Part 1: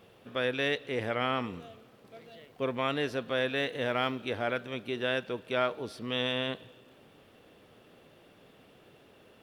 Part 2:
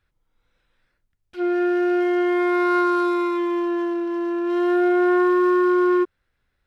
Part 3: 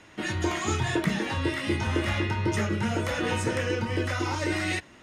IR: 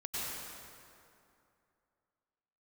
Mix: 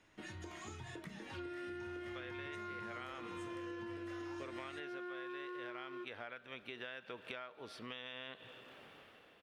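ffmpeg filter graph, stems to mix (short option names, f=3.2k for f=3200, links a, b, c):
-filter_complex "[0:a]tremolo=f=0.72:d=0.6,adelay=1800,volume=-6dB[a];[1:a]equalizer=f=790:w=0.8:g=-12.5,bandreject=f=2k:w=5.2,volume=-11dB[b];[2:a]acompressor=threshold=-28dB:ratio=6,volume=-16.5dB[c];[a][b]amix=inputs=2:normalize=0,equalizer=f=1.8k:w=0.4:g=12.5,acompressor=threshold=-40dB:ratio=3,volume=0dB[d];[c][d]amix=inputs=2:normalize=0,acompressor=threshold=-43dB:ratio=6"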